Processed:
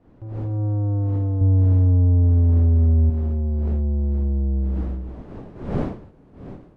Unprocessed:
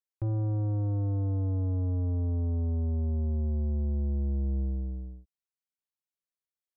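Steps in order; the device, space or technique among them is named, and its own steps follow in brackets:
0:01.41–0:03.10: spectral tilt −2 dB per octave
smartphone video outdoors (wind on the microphone 310 Hz −42 dBFS; automatic gain control gain up to 15.5 dB; level −8 dB; AAC 96 kbit/s 24,000 Hz)

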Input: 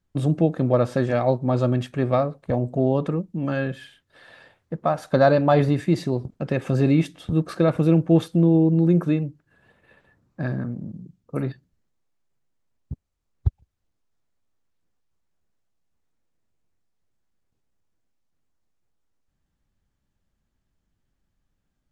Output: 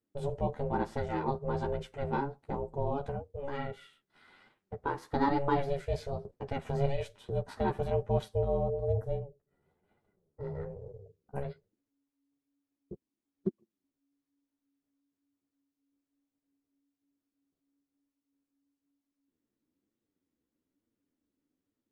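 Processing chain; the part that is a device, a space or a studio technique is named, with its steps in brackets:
0:08.68–0:10.55: parametric band 2,200 Hz −14 dB 2.9 octaves
alien voice (ring modulation 280 Hz; flanger 1.1 Hz, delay 8.2 ms, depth 6.6 ms, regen −9%)
level −5.5 dB

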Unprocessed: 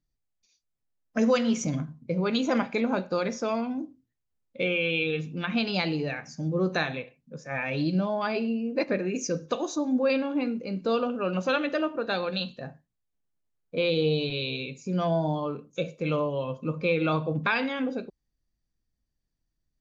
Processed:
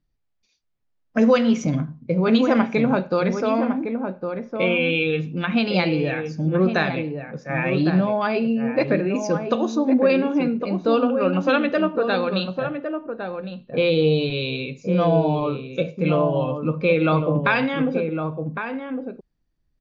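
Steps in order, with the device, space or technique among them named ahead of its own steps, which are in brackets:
shout across a valley (high-frequency loss of the air 160 metres; slap from a distant wall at 190 metres, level −6 dB)
level +7 dB

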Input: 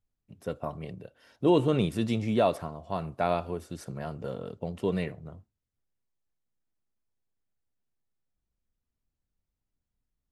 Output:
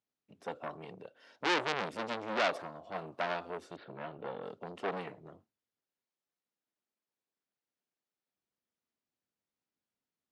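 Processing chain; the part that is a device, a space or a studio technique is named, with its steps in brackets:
0:03.76–0:04.42: Butterworth low-pass 4,100 Hz 72 dB per octave
public-address speaker with an overloaded transformer (saturating transformer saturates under 3,200 Hz; band-pass filter 270–5,800 Hz)

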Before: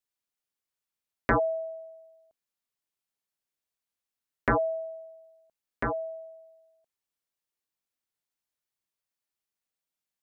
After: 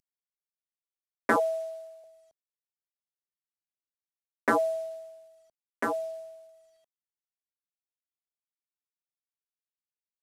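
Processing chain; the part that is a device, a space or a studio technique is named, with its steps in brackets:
early wireless headset (high-pass filter 200 Hz 24 dB per octave; variable-slope delta modulation 64 kbit/s)
0:01.36–0:02.04: elliptic high-pass filter 450 Hz
level +1 dB

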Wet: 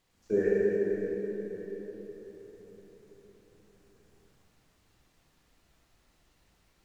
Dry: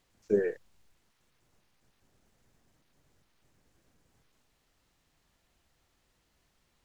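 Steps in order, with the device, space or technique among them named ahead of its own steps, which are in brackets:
cathedral (convolution reverb RT60 4.6 s, pre-delay 20 ms, DRR −6 dB)
level −2.5 dB

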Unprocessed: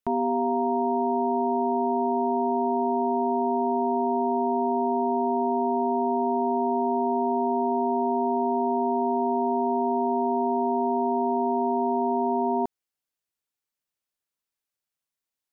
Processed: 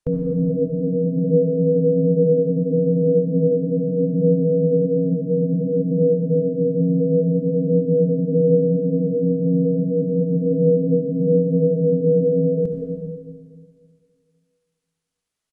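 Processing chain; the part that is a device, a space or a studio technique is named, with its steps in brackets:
monster voice (pitch shifter −6.5 semitones; formants moved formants −4.5 semitones; low-shelf EQ 120 Hz +9 dB; convolution reverb RT60 2.1 s, pre-delay 62 ms, DRR 1.5 dB)
level +3.5 dB

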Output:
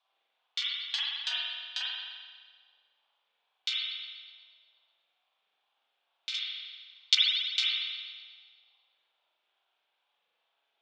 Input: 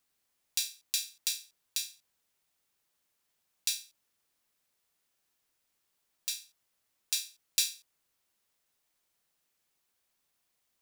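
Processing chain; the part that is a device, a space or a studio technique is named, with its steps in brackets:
0:06.34–0:07.15: meter weighting curve ITU-R 468
reverb reduction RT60 1.3 s
octave-band graphic EQ 125/250/500/1,000/2,000/8,000 Hz +12/+8/−11/−9/+8/+4 dB
voice changer toy (ring modulator whose carrier an LFO sweeps 610 Hz, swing 50%, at 2.3 Hz; loudspeaker in its box 570–4,000 Hz, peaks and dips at 820 Hz +6 dB, 1,900 Hz −5 dB, 3,500 Hz +7 dB)
spring reverb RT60 1.6 s, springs 42 ms, chirp 80 ms, DRR −7 dB
level +2 dB

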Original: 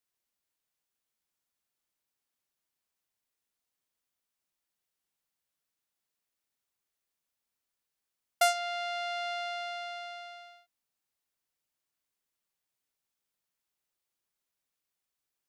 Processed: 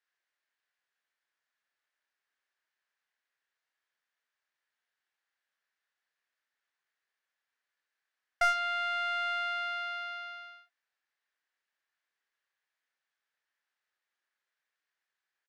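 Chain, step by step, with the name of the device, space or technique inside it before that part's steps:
intercom (band-pass filter 490–4,500 Hz; parametric band 1,700 Hz +12 dB 0.59 octaves; soft clipping −19 dBFS, distortion −12 dB; double-tracking delay 28 ms −7 dB)

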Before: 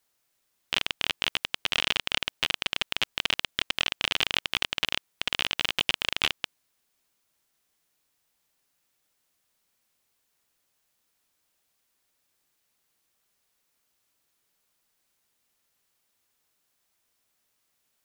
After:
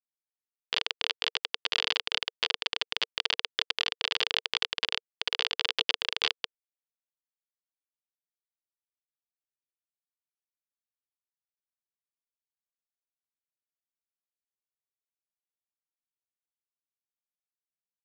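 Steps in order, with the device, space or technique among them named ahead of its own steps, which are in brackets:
hand-held game console (bit reduction 4 bits; loudspeaker in its box 420–5,500 Hz, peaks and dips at 460 Hz +7 dB, 770 Hz −5 dB, 1,300 Hz −5 dB, 2,400 Hz −7 dB, 4,400 Hz +4 dB)

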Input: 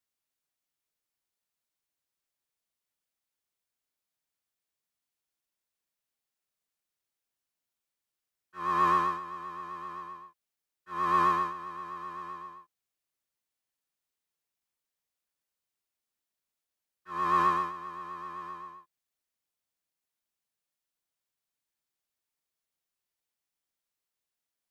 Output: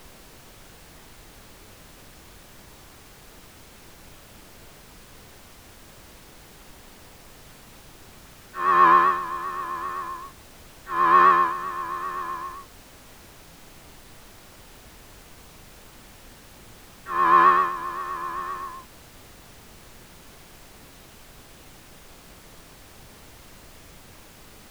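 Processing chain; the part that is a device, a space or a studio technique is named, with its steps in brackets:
horn gramophone (band-pass filter 240–3,600 Hz; parametric band 1,600 Hz +5.5 dB 0.38 octaves; tape wow and flutter; pink noise bed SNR 19 dB)
level +9 dB

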